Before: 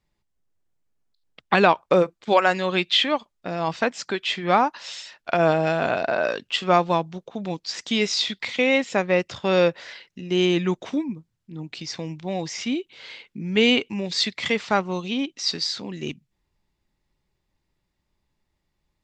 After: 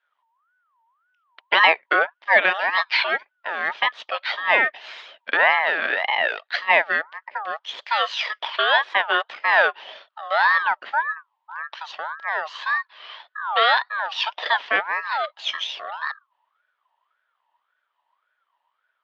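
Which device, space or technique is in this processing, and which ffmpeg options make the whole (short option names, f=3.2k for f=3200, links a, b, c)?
voice changer toy: -filter_complex "[0:a]asettb=1/sr,asplit=3[a][b][c];[a]atrim=end=5.594[d];[b]atrim=start=5.59:end=7.22,asetpts=PTS-STARTPTS,afade=t=in:d=0.004:c=qsin,afade=t=out:st=1.626:d=0.004:c=qsin,highpass=290[e];[c]atrim=start=7.216[f];[d][e]acrossfade=d=0.004:c1=hsin:c2=qsin[g];[g][f]acrossfade=d=0.004:c1=qsin:c2=hsin,aeval=exprs='val(0)*sin(2*PI*1200*n/s+1200*0.25/1.8*sin(2*PI*1.8*n/s))':c=same,highpass=580,equalizer=f=620:t=q:w=4:g=6,equalizer=f=940:t=q:w=4:g=6,equalizer=f=1.8k:t=q:w=4:g=6,equalizer=f=3.1k:t=q:w=4:g=6,lowpass=f=3.8k:w=0.5412,lowpass=f=3.8k:w=1.3066,volume=1dB"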